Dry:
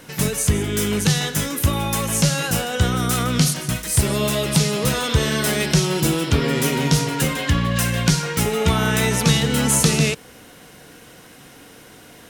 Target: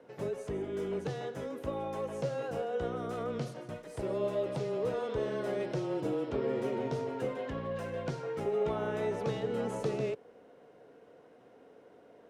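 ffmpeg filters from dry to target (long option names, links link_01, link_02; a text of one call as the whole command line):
ffmpeg -i in.wav -af "bandpass=frequency=530:width_type=q:width=2.1:csg=0,afreqshift=-18,volume=-5dB" out.wav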